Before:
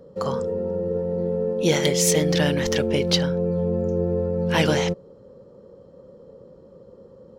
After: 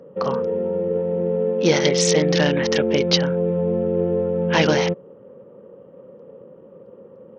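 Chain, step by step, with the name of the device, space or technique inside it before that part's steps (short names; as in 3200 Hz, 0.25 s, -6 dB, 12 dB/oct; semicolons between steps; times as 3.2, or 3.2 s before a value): dynamic EQ 3500 Hz, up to -5 dB, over -43 dBFS, Q 5.4; Bluetooth headset (HPF 160 Hz 12 dB/oct; downsampling 16000 Hz; gain +3.5 dB; SBC 64 kbps 48000 Hz)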